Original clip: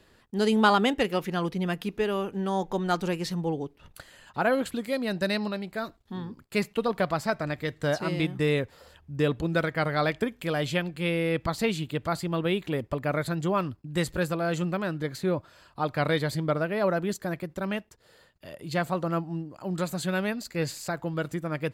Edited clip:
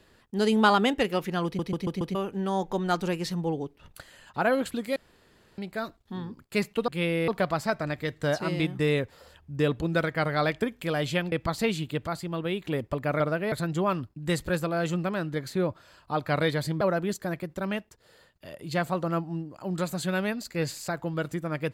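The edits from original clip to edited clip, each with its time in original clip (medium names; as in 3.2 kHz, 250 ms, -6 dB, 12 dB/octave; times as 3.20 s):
1.45 s: stutter in place 0.14 s, 5 plays
4.96–5.58 s: room tone
10.92–11.32 s: move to 6.88 s
12.07–12.65 s: gain -3.5 dB
16.49–16.81 s: move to 13.20 s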